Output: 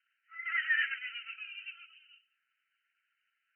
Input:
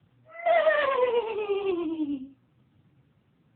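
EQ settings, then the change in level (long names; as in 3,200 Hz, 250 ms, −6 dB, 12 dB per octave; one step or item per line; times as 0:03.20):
linear-phase brick-wall band-pass 1,300–3,100 Hz
0.0 dB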